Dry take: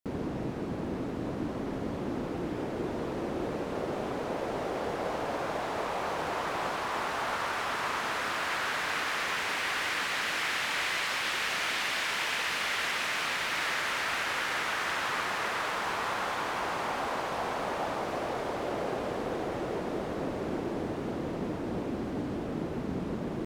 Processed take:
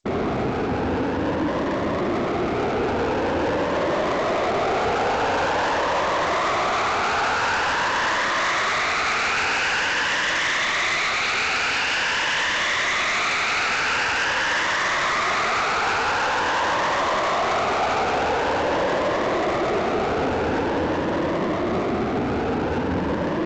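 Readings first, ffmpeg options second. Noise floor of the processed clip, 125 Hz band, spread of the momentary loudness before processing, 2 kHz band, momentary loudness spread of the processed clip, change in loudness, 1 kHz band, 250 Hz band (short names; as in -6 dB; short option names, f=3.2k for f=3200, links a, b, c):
-24 dBFS, +8.5 dB, 6 LU, +10.0 dB, 4 LU, +10.0 dB, +11.0 dB, +9.0 dB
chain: -filter_complex "[0:a]afftfilt=real='re*pow(10,8/40*sin(2*PI*(1.2*log(max(b,1)*sr/1024/100)/log(2)-(0.46)*(pts-256)/sr)))':imag='im*pow(10,8/40*sin(2*PI*(1.2*log(max(b,1)*sr/1024/100)/log(2)-(0.46)*(pts-256)/sr)))':win_size=1024:overlap=0.75,equalizer=f=81:t=o:w=0.77:g=10.5,bandreject=f=3.2k:w=17,acrossover=split=540|4700[a][b][c];[b]alimiter=level_in=3dB:limit=-24dB:level=0:latency=1,volume=-3dB[d];[a][d][c]amix=inputs=3:normalize=0,asplit=2[e][f];[f]highpass=f=720:p=1,volume=19dB,asoftclip=type=tanh:threshold=-20dB[g];[e][g]amix=inputs=2:normalize=0,lowpass=f=5.3k:p=1,volume=-6dB,adynamicsmooth=sensitivity=6.5:basefreq=580,volume=6dB" -ar 16000 -c:a g722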